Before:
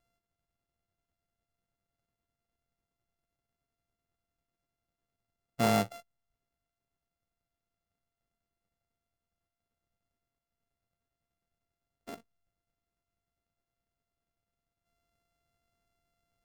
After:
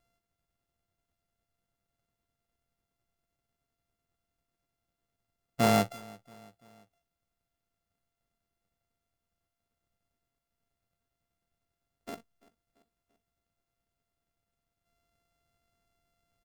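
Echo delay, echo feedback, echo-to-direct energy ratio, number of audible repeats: 339 ms, 52%, -22.0 dB, 3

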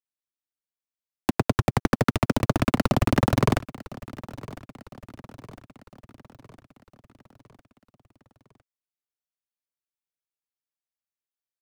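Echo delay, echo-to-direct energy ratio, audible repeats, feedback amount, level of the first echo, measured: 1006 ms, -17.0 dB, 4, 54%, -18.5 dB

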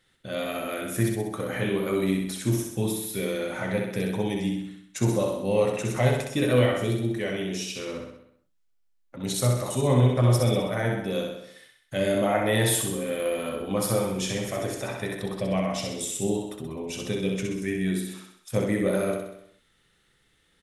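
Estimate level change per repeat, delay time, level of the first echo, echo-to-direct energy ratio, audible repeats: -5.0 dB, 64 ms, -4.0 dB, -2.5 dB, 6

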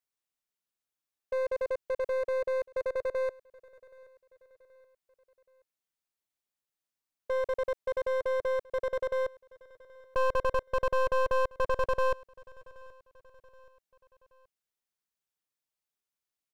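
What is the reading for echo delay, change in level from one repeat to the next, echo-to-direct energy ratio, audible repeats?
776 ms, -6.5 dB, -22.0 dB, 2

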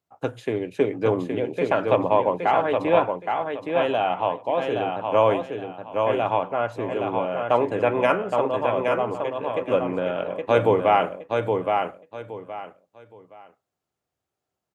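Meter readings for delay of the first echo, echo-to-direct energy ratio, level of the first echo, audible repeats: 819 ms, -4.0 dB, -4.5 dB, 3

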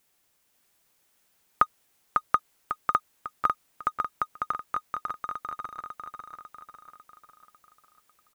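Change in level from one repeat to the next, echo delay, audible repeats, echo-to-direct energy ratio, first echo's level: -6.0 dB, 548 ms, 5, -3.0 dB, -4.0 dB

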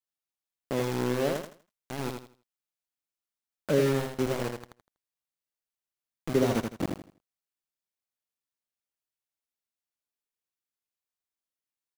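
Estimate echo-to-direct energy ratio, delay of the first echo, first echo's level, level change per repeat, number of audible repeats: -4.5 dB, 81 ms, -5.0 dB, -11.5 dB, 3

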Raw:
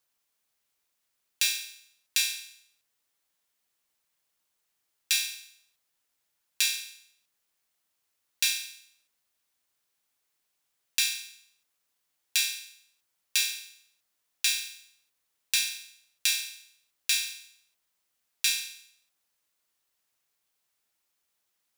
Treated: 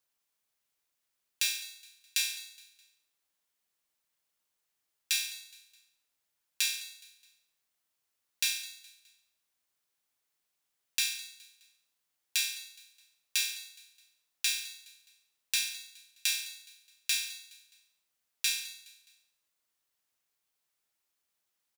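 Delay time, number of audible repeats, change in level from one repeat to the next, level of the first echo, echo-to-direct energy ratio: 209 ms, 3, -7.5 dB, -19.5 dB, -18.5 dB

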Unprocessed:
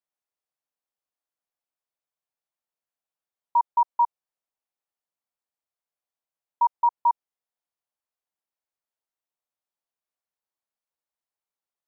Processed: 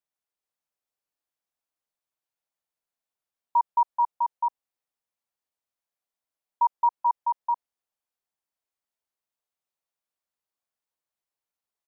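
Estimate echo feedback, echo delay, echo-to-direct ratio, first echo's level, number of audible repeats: no regular repeats, 433 ms, -4.0 dB, -4.0 dB, 1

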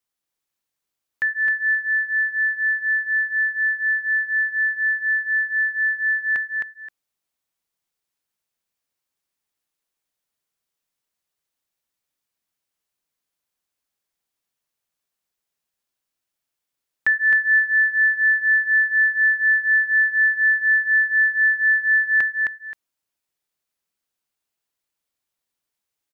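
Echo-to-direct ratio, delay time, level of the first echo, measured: -4.0 dB, 263 ms, -4.0 dB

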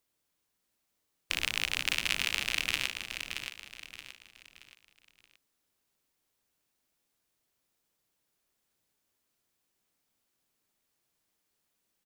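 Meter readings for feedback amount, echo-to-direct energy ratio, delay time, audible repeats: 37%, -6.5 dB, 625 ms, 4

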